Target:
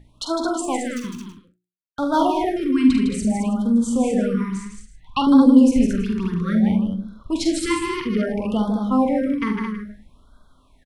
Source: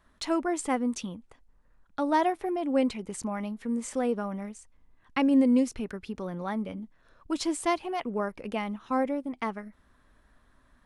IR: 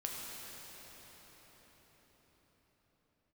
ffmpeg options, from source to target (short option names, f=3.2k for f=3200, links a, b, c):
-filter_complex "[0:a]acrossover=split=210[a][b];[a]dynaudnorm=f=190:g=13:m=14dB[c];[c][b]amix=inputs=2:normalize=0,asettb=1/sr,asplit=3[d][e][f];[d]atrim=end=0.644[g];[e]atrim=start=0.64:end=2.22,asetpts=PTS-STARTPTS,afade=t=in:d=0.004:c=qsin,afade=t=out:st=1.576:d=0.004:c=qsin,aeval=exprs='sgn(val(0))*max(abs(val(0))-0.0133,0)':c=same[h];[f]atrim=start=2.216[i];[g][h]acrossfade=d=0.004:c1=hsin:c2=qsin[j];[j][i]acrossfade=d=0.004:c1=qsin:c2=hsin,asettb=1/sr,asplit=3[k][l][m];[k]atrim=end=4.344[n];[l]atrim=start=4.34:end=5.27,asetpts=PTS-STARTPTS,afade=t=in:d=0.004:c=qsin,afade=t=out:st=0.926:d=0.004:c=qsin,equalizer=f=250:t=o:w=1:g=-6,equalizer=f=500:t=o:w=1:g=-11,equalizer=f=1k:t=o:w=1:g=10,equalizer=f=4k:t=o:w=1:g=7[o];[m]atrim=start=5.266[p];[n][o]acrossfade=d=0.004:c1=hsin:c2=qsin[q];[q][p]acrossfade=d=0.004:c1=qsin:c2=hsin,aeval=exprs='val(0)+0.00447*(sin(2*PI*60*n/s)+sin(2*PI*2*60*n/s)/2+sin(2*PI*3*60*n/s)/3+sin(2*PI*4*60*n/s)/4+sin(2*PI*5*60*n/s)/5)':c=same,equalizer=f=2.7k:w=0.6:g=4,bandreject=f=60:t=h:w=6,bandreject=f=120:t=h:w=6,bandreject=f=180:t=h:w=6,bandreject=f=240:t=h:w=6,bandreject=f=300:t=h:w=6,bandreject=f=360:t=h:w=6,asplit=2[r][s];[s]adelay=42,volume=-12dB[t];[r][t]amix=inputs=2:normalize=0,asplit=2[u][v];[v]aecho=0:1:47|74|156|219|325:0.447|0.316|0.501|0.473|0.141[w];[u][w]amix=inputs=2:normalize=0,afftfilt=real='re*(1-between(b*sr/1024,610*pow(2300/610,0.5+0.5*sin(2*PI*0.6*pts/sr))/1.41,610*pow(2300/610,0.5+0.5*sin(2*PI*0.6*pts/sr))*1.41))':imag='im*(1-between(b*sr/1024,610*pow(2300/610,0.5+0.5*sin(2*PI*0.6*pts/sr))/1.41,610*pow(2300/610,0.5+0.5*sin(2*PI*0.6*pts/sr))*1.41))':win_size=1024:overlap=0.75,volume=3dB"